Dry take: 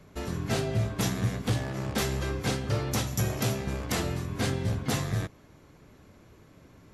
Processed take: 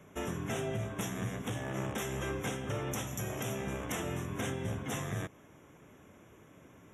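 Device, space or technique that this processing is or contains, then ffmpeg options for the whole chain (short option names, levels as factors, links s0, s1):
PA system with an anti-feedback notch: -af "highpass=f=170:p=1,asuperstop=centerf=4500:order=8:qfactor=2.3,alimiter=level_in=1.19:limit=0.0631:level=0:latency=1:release=238,volume=0.841"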